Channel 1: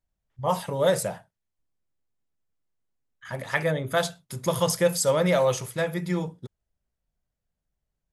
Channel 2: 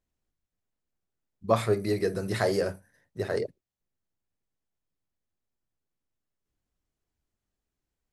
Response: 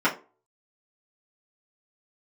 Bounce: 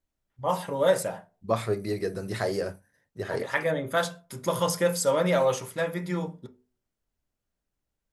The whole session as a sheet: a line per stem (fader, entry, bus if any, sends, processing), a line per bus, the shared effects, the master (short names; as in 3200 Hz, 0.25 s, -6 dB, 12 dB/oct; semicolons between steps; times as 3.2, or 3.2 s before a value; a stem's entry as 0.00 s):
-4.0 dB, 0.00 s, send -18 dB, notches 50/100/150/200/250 Hz
-2.5 dB, 0.00 s, no send, dry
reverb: on, RT60 0.35 s, pre-delay 3 ms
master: dry